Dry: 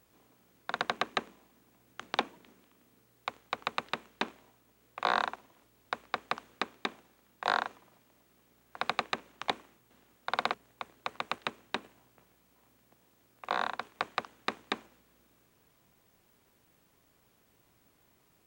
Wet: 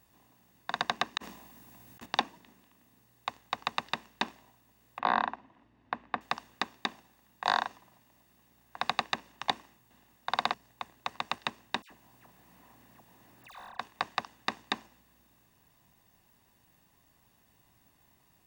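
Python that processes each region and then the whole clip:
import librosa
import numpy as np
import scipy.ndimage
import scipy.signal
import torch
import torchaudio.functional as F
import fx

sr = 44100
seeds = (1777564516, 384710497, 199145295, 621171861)

y = fx.chain(x, sr, fx.high_shelf(hz=8000.0, db=4.0),
    fx.over_compress(threshold_db=-50.0, ratio=-0.5), at=(1.17, 2.06))
y = fx.chain(y, sr, fx.lowpass(hz=2400.0, slope=12),
    fx.peak_eq(hz=260.0, db=7.5, octaves=0.63), at=(4.99, 6.21))
y = fx.chain(y, sr, fx.block_float(bits=5),
    fx.dispersion(late='lows', ms=82.0, hz=2100.0),
    fx.band_squash(depth_pct=100), at=(11.82, 13.79))
y = fx.dynamic_eq(y, sr, hz=5100.0, q=2.3, threshold_db=-58.0, ratio=4.0, max_db=6)
y = y + 0.47 * np.pad(y, (int(1.1 * sr / 1000.0), 0))[:len(y)]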